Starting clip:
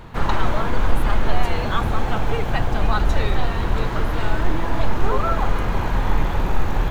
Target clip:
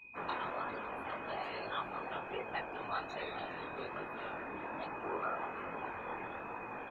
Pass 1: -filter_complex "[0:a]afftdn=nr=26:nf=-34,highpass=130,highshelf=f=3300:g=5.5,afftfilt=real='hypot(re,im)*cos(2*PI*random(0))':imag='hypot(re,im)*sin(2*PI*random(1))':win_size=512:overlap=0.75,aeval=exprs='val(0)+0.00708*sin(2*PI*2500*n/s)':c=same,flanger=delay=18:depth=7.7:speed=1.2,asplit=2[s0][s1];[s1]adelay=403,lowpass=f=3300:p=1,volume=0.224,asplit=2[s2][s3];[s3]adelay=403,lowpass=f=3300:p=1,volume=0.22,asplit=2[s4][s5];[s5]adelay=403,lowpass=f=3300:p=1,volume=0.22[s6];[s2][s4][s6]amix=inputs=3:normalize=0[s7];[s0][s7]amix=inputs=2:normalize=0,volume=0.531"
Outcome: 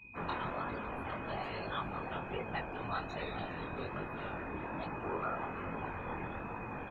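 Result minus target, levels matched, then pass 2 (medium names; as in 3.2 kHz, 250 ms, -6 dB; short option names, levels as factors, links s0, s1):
125 Hz band +10.0 dB
-filter_complex "[0:a]afftdn=nr=26:nf=-34,highpass=330,highshelf=f=3300:g=5.5,afftfilt=real='hypot(re,im)*cos(2*PI*random(0))':imag='hypot(re,im)*sin(2*PI*random(1))':win_size=512:overlap=0.75,aeval=exprs='val(0)+0.00708*sin(2*PI*2500*n/s)':c=same,flanger=delay=18:depth=7.7:speed=1.2,asplit=2[s0][s1];[s1]adelay=403,lowpass=f=3300:p=1,volume=0.224,asplit=2[s2][s3];[s3]adelay=403,lowpass=f=3300:p=1,volume=0.22,asplit=2[s4][s5];[s5]adelay=403,lowpass=f=3300:p=1,volume=0.22[s6];[s2][s4][s6]amix=inputs=3:normalize=0[s7];[s0][s7]amix=inputs=2:normalize=0,volume=0.531"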